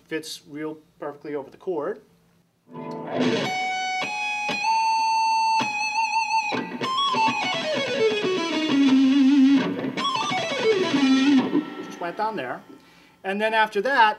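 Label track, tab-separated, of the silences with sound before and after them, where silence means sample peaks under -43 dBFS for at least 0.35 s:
1.990000	2.700000	silence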